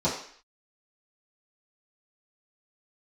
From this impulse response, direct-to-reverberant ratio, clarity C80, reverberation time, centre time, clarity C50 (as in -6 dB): -11.0 dB, 9.0 dB, 0.55 s, 34 ms, 5.5 dB